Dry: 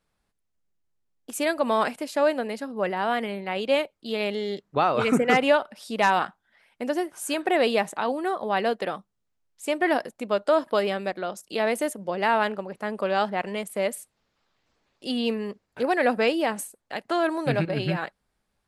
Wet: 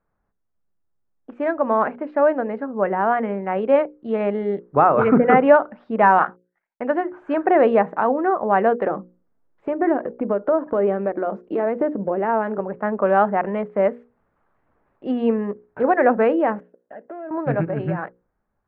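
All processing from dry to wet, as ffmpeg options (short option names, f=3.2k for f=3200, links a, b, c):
-filter_complex "[0:a]asettb=1/sr,asplit=3[a][b][c];[a]atrim=end=6.184[d];[b]atrim=start=6.18:end=7.09,asetpts=PTS-STARTPTS,afade=t=in:d=0.004:c=qsin,afade=t=out:st=0.906:d=0.004:c=qsin,agate=range=-32dB:threshold=-58dB:ratio=16:release=100:detection=peak,tiltshelf=f=710:g=-4.5[e];[c]atrim=start=7.086[f];[d][e]acrossfade=d=0.004:c1=hsin:c2=qsin[g];[g][f]acrossfade=d=0.004:c1=qsin:c2=hsin,asettb=1/sr,asplit=3[h][i][j];[h]atrim=end=8.864[k];[i]atrim=start=8.86:end=12.6,asetpts=PTS-STARTPTS,afade=t=in:d=0.004:c=qsin,afade=t=out:st=3.736:d=0.004:c=qsin,equalizer=f=350:w=0.69:g=7.5,acompressor=threshold=-29dB:ratio=2.5:attack=3.2:release=140:knee=1:detection=peak,aphaser=in_gain=1:out_gain=1:delay=4.5:decay=0.24:speed=1:type=sinusoidal[l];[j]atrim=start=12.596[m];[k][l]acrossfade=d=0.004:c1=hsin:c2=qsin[n];[n][m]acrossfade=d=0.004:c1=qsin:c2=hsin,asettb=1/sr,asplit=3[o][p][q];[o]atrim=end=16.604[r];[p]atrim=start=16.6:end=17.31,asetpts=PTS-STARTPTS,afade=t=in:d=0.004:c=qsin,afade=t=out:st=0.706:d=0.004:c=qsin,acompressor=threshold=-34dB:ratio=3:attack=3.2:release=140:knee=1:detection=peak,volume=34dB,asoftclip=hard,volume=-34dB,highpass=210,equalizer=f=590:t=q:w=4:g=5,equalizer=f=870:t=q:w=4:g=-8,equalizer=f=1.2k:t=q:w=4:g=-9,equalizer=f=2.3k:t=q:w=4:g=-9,lowpass=f=2.9k:w=0.5412,lowpass=f=2.9k:w=1.3066[s];[q]atrim=start=17.306[t];[r][s]acrossfade=d=0.004:c1=hsin:c2=qsin[u];[u][t]acrossfade=d=0.004:c1=qsin:c2=hsin,lowpass=f=1.6k:w=0.5412,lowpass=f=1.6k:w=1.3066,dynaudnorm=f=290:g=17:m=5dB,bandreject=f=60:t=h:w=6,bandreject=f=120:t=h:w=6,bandreject=f=180:t=h:w=6,bandreject=f=240:t=h:w=6,bandreject=f=300:t=h:w=6,bandreject=f=360:t=h:w=6,bandreject=f=420:t=h:w=6,bandreject=f=480:t=h:w=6,bandreject=f=540:t=h:w=6,volume=3dB"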